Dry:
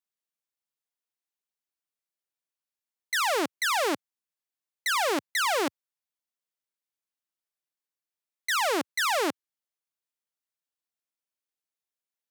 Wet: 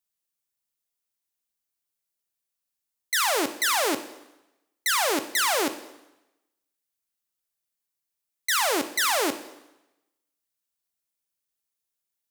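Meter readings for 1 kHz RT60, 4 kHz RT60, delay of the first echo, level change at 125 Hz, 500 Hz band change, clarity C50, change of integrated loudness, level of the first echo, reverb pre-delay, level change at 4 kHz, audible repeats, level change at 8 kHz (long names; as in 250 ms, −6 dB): 0.95 s, 0.90 s, no echo audible, can't be measured, +1.0 dB, 12.5 dB, +3.0 dB, no echo audible, 6 ms, +3.5 dB, no echo audible, +7.0 dB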